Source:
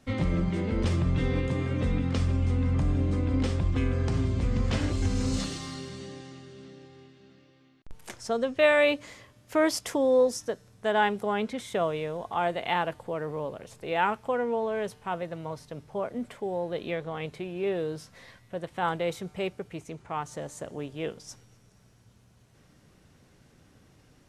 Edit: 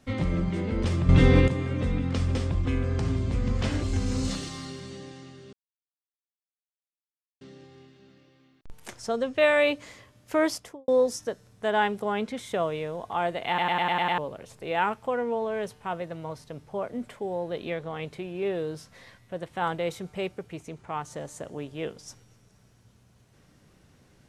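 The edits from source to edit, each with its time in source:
0:01.09–0:01.48: clip gain +9.5 dB
0:02.35–0:03.44: remove
0:06.62: splice in silence 1.88 s
0:09.65–0:10.09: fade out and dull
0:12.69: stutter in place 0.10 s, 7 plays

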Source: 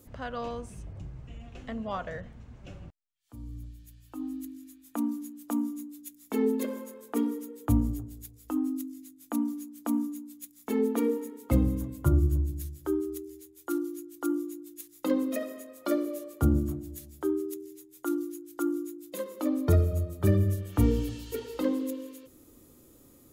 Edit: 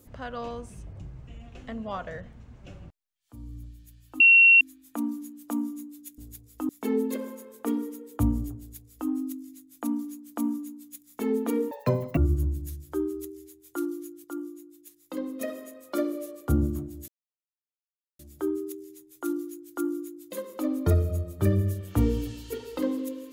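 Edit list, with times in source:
0:04.20–0:04.61: beep over 2,730 Hz −12 dBFS
0:08.08–0:08.59: duplicate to 0:06.18
0:11.20–0:12.10: play speed 195%
0:14.17–0:15.34: clip gain −6.5 dB
0:17.01: splice in silence 1.11 s

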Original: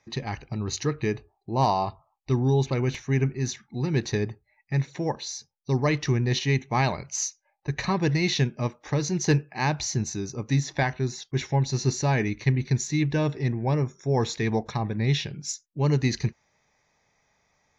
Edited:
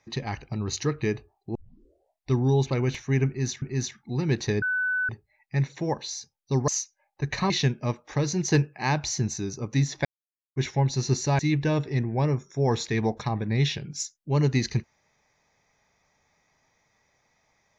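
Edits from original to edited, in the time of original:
0:01.55: tape start 0.76 s
0:03.27–0:03.62: repeat, 2 plays
0:04.27: insert tone 1,500 Hz −23 dBFS 0.47 s
0:05.86–0:07.14: remove
0:07.96–0:08.26: remove
0:10.81–0:11.32: silence
0:12.15–0:12.88: remove

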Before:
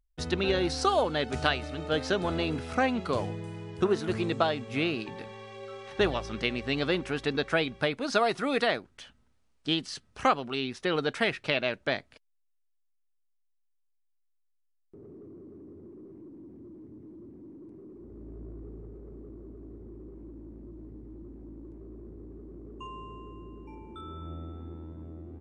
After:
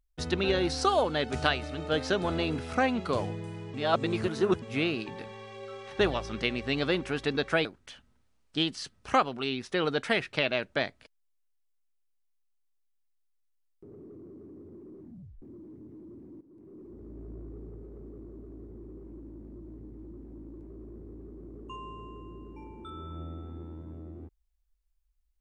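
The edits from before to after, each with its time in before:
0:03.74–0:04.62: reverse
0:07.65–0:08.76: remove
0:16.12: tape stop 0.41 s
0:17.52–0:17.91: fade in, from −16 dB

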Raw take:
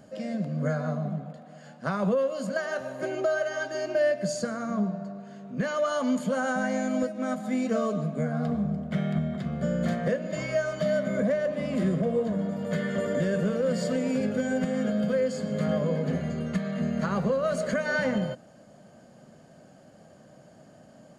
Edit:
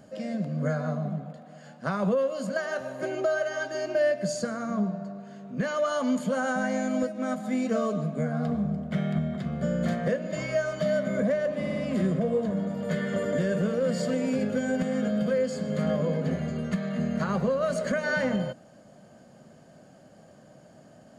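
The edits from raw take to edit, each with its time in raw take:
0:11.58: stutter 0.06 s, 4 plays

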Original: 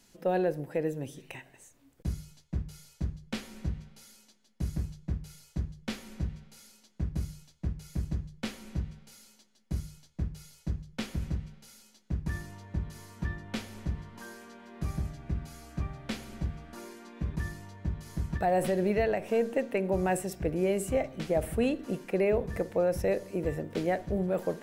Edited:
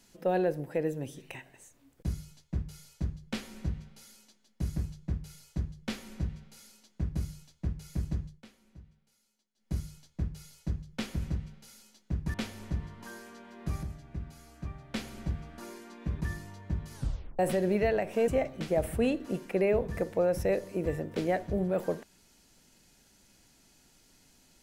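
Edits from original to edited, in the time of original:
0:08.27–0:09.72: duck −18.5 dB, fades 0.17 s
0:12.34–0:13.49: remove
0:14.98–0:16.09: clip gain −5.5 dB
0:18.10: tape stop 0.44 s
0:19.43–0:20.87: remove

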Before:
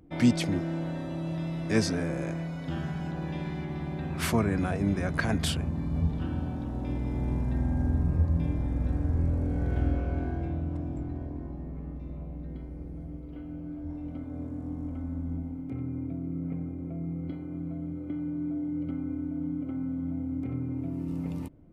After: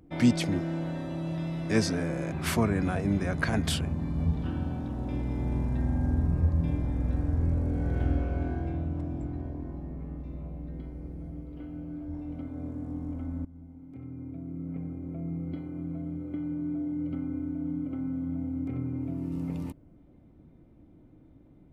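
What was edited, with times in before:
0:02.32–0:04.08: remove
0:15.21–0:17.03: fade in, from −17.5 dB

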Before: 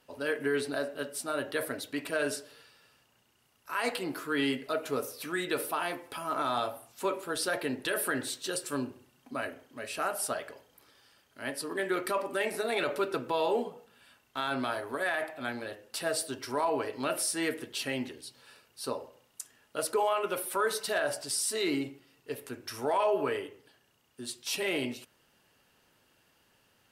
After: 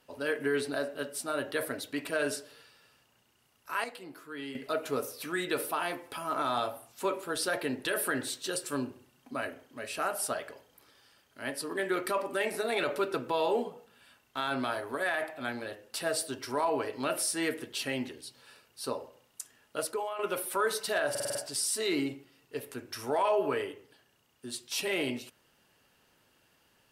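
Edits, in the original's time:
0:03.84–0:04.55: clip gain −11.5 dB
0:19.78–0:20.19: fade out quadratic, to −9.5 dB
0:21.10: stutter 0.05 s, 6 plays

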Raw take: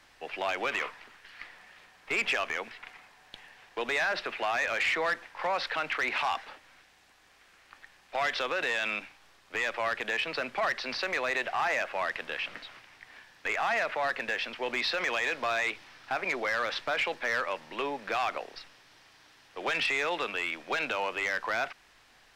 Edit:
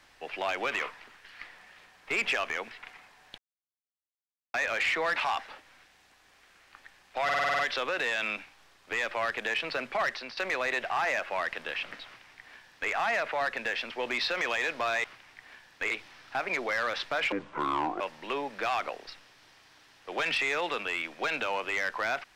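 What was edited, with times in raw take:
0:03.38–0:04.54: silence
0:05.16–0:06.14: remove
0:08.22: stutter 0.05 s, 8 plays
0:10.72–0:11.00: fade out, to −14 dB
0:12.68–0:13.55: duplicate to 0:15.67
0:17.08–0:17.49: play speed 60%

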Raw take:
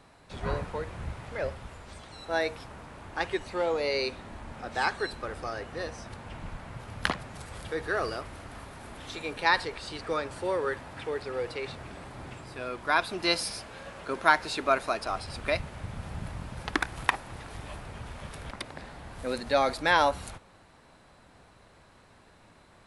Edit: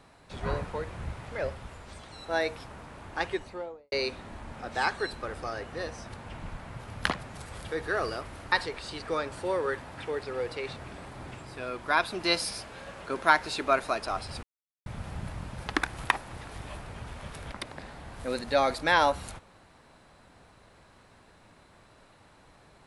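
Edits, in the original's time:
0:03.21–0:03.92: fade out and dull
0:08.52–0:09.51: remove
0:15.42–0:15.85: silence

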